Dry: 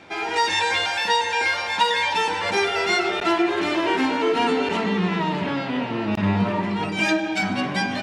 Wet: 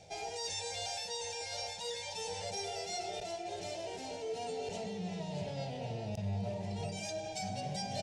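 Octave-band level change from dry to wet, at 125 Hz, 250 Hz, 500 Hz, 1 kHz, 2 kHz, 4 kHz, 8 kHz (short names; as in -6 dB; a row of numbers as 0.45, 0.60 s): -10.5, -21.0, -14.5, -19.5, -25.5, -15.0, -5.5 dB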